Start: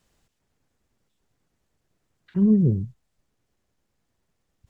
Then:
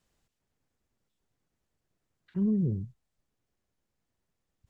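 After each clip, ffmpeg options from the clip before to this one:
-af "alimiter=limit=-13.5dB:level=0:latency=1:release=41,volume=-7.5dB"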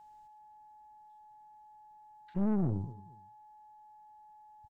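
-filter_complex "[0:a]aeval=exprs='val(0)+0.00224*sin(2*PI*850*n/s)':c=same,asplit=2[a][b];[b]adelay=223,lowpass=f=2k:p=1,volume=-19dB,asplit=2[c][d];[d]adelay=223,lowpass=f=2k:p=1,volume=0.27[e];[a][c][e]amix=inputs=3:normalize=0,aeval=exprs='(tanh(31.6*val(0)+0.65)-tanh(0.65))/31.6':c=same,volume=3dB"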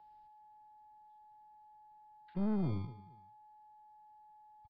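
-filter_complex "[0:a]acrossover=split=120|370|570[a][b][c][d];[a]acrusher=samples=39:mix=1:aa=0.000001[e];[e][b][c][d]amix=inputs=4:normalize=0,aresample=11025,aresample=44100,volume=-3.5dB"

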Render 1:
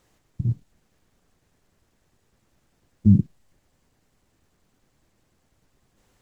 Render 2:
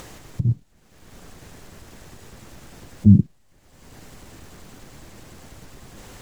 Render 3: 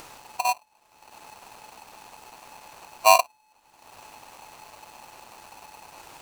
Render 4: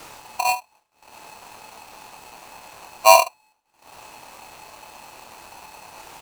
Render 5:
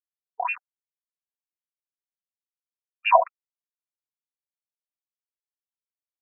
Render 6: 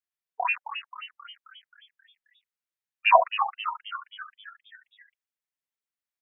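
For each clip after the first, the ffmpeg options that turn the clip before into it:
-af "acompressor=mode=upward:threshold=-29dB:ratio=2.5,volume=3.5dB"
-filter_complex "[0:a]asplit=2[a][b];[b]acrusher=bits=6:mix=0:aa=0.000001,volume=-12dB[c];[a][c]amix=inputs=2:normalize=0,aeval=exprs='val(0)*sgn(sin(2*PI*860*n/s))':c=same,volume=-6.5dB"
-af "aecho=1:1:26|73:0.531|0.188,agate=range=-33dB:threshold=-49dB:ratio=3:detection=peak,volume=3dB"
-af "aeval=exprs='val(0)*gte(abs(val(0)),0.0447)':c=same,afftfilt=real='re*between(b*sr/1024,610*pow(2200/610,0.5+0.5*sin(2*PI*4.3*pts/sr))/1.41,610*pow(2200/610,0.5+0.5*sin(2*PI*4.3*pts/sr))*1.41)':imag='im*between(b*sr/1024,610*pow(2200/610,0.5+0.5*sin(2*PI*4.3*pts/sr))/1.41,610*pow(2200/610,0.5+0.5*sin(2*PI*4.3*pts/sr))*1.41)':win_size=1024:overlap=0.75"
-filter_complex "[0:a]equalizer=f=1.9k:w=1.1:g=6.5,asplit=2[a][b];[b]asplit=7[c][d][e][f][g][h][i];[c]adelay=266,afreqshift=140,volume=-9.5dB[j];[d]adelay=532,afreqshift=280,volume=-14.5dB[k];[e]adelay=798,afreqshift=420,volume=-19.6dB[l];[f]adelay=1064,afreqshift=560,volume=-24.6dB[m];[g]adelay=1330,afreqshift=700,volume=-29.6dB[n];[h]adelay=1596,afreqshift=840,volume=-34.7dB[o];[i]adelay=1862,afreqshift=980,volume=-39.7dB[p];[j][k][l][m][n][o][p]amix=inputs=7:normalize=0[q];[a][q]amix=inputs=2:normalize=0,volume=-2dB"

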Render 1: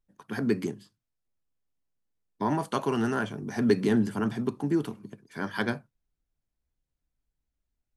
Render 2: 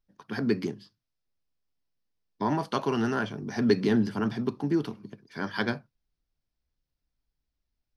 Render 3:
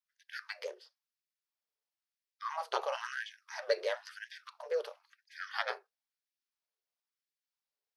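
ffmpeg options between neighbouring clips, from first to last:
-af "highshelf=f=6.3k:t=q:w=3:g=-6.5"
-af "aeval=exprs='val(0)*sin(2*PI*160*n/s)':c=same,afftfilt=real='re*gte(b*sr/1024,380*pow(1600/380,0.5+0.5*sin(2*PI*0.99*pts/sr)))':imag='im*gte(b*sr/1024,380*pow(1600/380,0.5+0.5*sin(2*PI*0.99*pts/sr)))':win_size=1024:overlap=0.75,volume=-1dB"

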